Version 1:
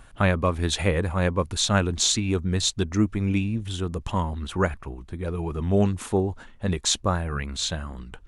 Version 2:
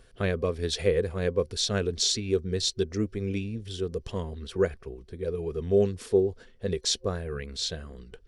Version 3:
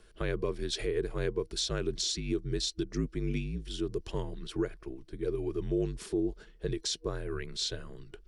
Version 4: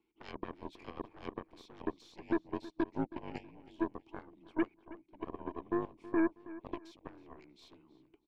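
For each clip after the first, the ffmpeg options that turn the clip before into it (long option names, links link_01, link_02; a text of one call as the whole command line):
ffmpeg -i in.wav -af "superequalizer=7b=3.55:9b=0.398:10b=0.562:13b=1.41:14b=2.51,volume=-7.5dB" out.wav
ffmpeg -i in.wav -af "alimiter=limit=-20.5dB:level=0:latency=1:release=167,afreqshift=-50,volume=-1.5dB" out.wav
ffmpeg -i in.wav -filter_complex "[0:a]asplit=3[link_01][link_02][link_03];[link_01]bandpass=frequency=300:width_type=q:width=8,volume=0dB[link_04];[link_02]bandpass=frequency=870:width_type=q:width=8,volume=-6dB[link_05];[link_03]bandpass=frequency=2240:width_type=q:width=8,volume=-9dB[link_06];[link_04][link_05][link_06]amix=inputs=3:normalize=0,aeval=exprs='0.0355*(cos(1*acos(clip(val(0)/0.0355,-1,1)))-cos(1*PI/2))+0.00398*(cos(4*acos(clip(val(0)/0.0355,-1,1)))-cos(4*PI/2))+0.00708*(cos(7*acos(clip(val(0)/0.0355,-1,1)))-cos(7*PI/2))':channel_layout=same,asplit=2[link_07][link_08];[link_08]adelay=321,lowpass=frequency=4500:poles=1,volume=-17dB,asplit=2[link_09][link_10];[link_10]adelay=321,lowpass=frequency=4500:poles=1,volume=0.33,asplit=2[link_11][link_12];[link_12]adelay=321,lowpass=frequency=4500:poles=1,volume=0.33[link_13];[link_07][link_09][link_11][link_13]amix=inputs=4:normalize=0,volume=6.5dB" out.wav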